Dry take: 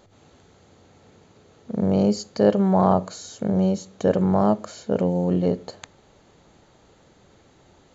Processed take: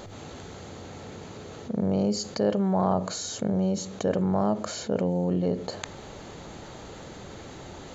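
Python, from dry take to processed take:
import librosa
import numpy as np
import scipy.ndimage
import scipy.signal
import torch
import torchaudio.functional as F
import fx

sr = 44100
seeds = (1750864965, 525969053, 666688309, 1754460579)

y = fx.env_flatten(x, sr, amount_pct=50)
y = y * 10.0 ** (-8.0 / 20.0)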